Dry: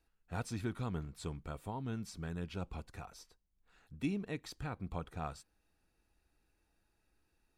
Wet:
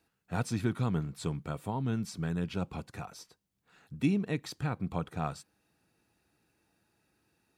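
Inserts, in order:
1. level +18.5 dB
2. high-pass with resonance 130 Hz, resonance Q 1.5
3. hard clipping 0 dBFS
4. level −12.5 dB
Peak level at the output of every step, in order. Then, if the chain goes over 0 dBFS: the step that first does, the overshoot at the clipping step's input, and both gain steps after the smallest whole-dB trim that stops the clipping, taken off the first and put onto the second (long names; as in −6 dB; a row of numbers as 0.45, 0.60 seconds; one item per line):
−5.5, −3.0, −3.0, −15.5 dBFS
no step passes full scale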